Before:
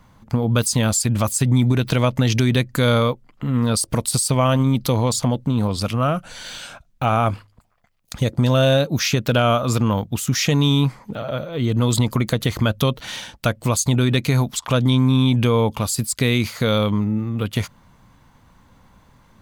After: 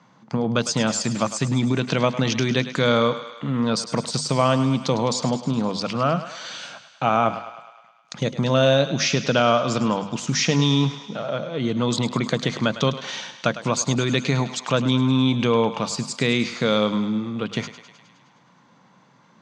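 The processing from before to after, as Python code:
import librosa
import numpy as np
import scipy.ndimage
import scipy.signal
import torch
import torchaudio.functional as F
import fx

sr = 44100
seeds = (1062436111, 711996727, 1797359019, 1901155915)

p1 = scipy.signal.sosfilt(scipy.signal.ellip(3, 1.0, 40, [150.0, 6300.0], 'bandpass', fs=sr, output='sos'), x)
p2 = fx.hum_notches(p1, sr, base_hz=50, count=5)
y = p2 + fx.echo_thinned(p2, sr, ms=104, feedback_pct=66, hz=470.0, wet_db=-12, dry=0)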